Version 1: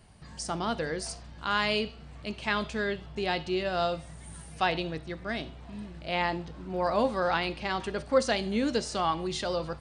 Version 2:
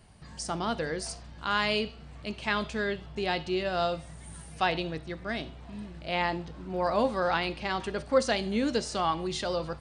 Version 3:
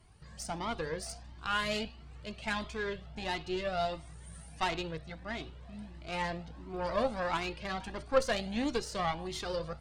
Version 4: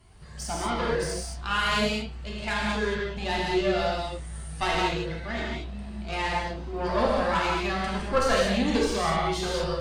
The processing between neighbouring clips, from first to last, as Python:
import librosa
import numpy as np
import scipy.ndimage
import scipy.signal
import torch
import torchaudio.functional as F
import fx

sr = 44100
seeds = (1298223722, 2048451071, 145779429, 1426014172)

y1 = x
y2 = fx.cheby_harmonics(y1, sr, harmonics=(3, 4, 8), levels_db=(-19, -19, -35), full_scale_db=-11.0)
y2 = fx.comb_cascade(y2, sr, direction='rising', hz=1.5)
y2 = y2 * librosa.db_to_amplitude(2.5)
y3 = fx.rev_gated(y2, sr, seeds[0], gate_ms=250, shape='flat', drr_db=-4.5)
y3 = y3 * librosa.db_to_amplitude(3.0)